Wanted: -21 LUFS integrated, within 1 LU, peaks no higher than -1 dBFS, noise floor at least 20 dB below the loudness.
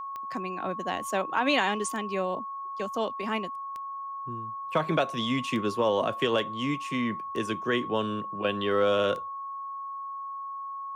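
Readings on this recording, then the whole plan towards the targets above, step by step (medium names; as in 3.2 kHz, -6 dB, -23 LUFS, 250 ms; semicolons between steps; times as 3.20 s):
clicks found 6; steady tone 1.1 kHz; tone level -34 dBFS; loudness -29.5 LUFS; peak level -12.0 dBFS; loudness target -21.0 LUFS
-> de-click; band-stop 1.1 kHz, Q 30; trim +8.5 dB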